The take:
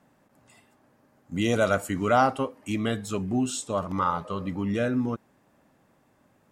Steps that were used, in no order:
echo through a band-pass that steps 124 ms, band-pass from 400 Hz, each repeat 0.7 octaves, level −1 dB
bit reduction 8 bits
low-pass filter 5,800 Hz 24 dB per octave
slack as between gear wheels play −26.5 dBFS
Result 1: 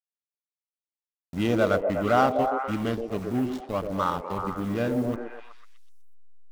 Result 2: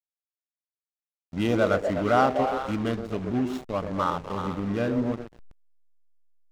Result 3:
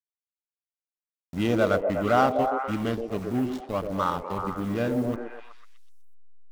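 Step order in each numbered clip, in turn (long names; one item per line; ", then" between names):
low-pass filter, then slack as between gear wheels, then bit reduction, then echo through a band-pass that steps
echo through a band-pass that steps, then bit reduction, then low-pass filter, then slack as between gear wheels
low-pass filter, then bit reduction, then slack as between gear wheels, then echo through a band-pass that steps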